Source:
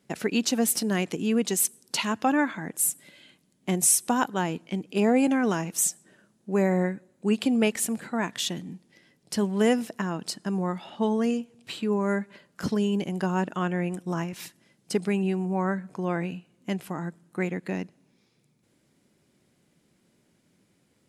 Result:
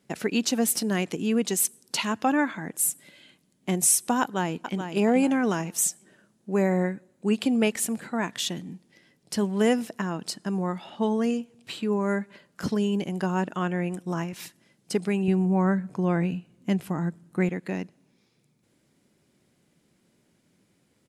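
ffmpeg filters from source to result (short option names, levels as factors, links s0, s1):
-filter_complex "[0:a]asplit=2[s0][s1];[s1]afade=t=in:st=4.21:d=0.01,afade=t=out:st=4.8:d=0.01,aecho=0:1:430|860|1290:0.398107|0.0995268|0.0248817[s2];[s0][s2]amix=inputs=2:normalize=0,asettb=1/sr,asplit=3[s3][s4][s5];[s3]atrim=end=15.284[s6];[s4]atrim=start=15.28:end=17.49,asetpts=PTS-STARTPTS,afade=t=in:d=0.004:c=qsin,afade=t=out:st=2.206:d=0.004:c=qsin,lowshelf=f=220:g=10[s7];[s5]atrim=start=17.486[s8];[s6][s7]acrossfade=d=0.004:c1=hsin:c2=qsin[s9];[s9][s8]acrossfade=d=0.004:c1=qsin:c2=hsin"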